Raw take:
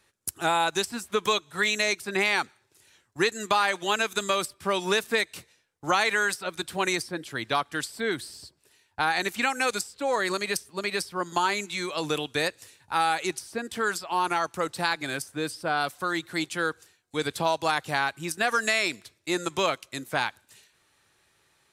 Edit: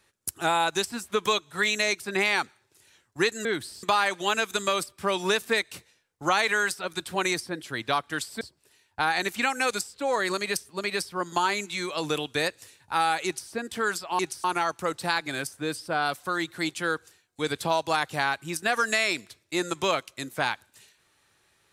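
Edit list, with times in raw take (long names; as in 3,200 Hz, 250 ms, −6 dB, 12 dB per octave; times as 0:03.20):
0:08.03–0:08.41: move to 0:03.45
0:13.25–0:13.50: duplicate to 0:14.19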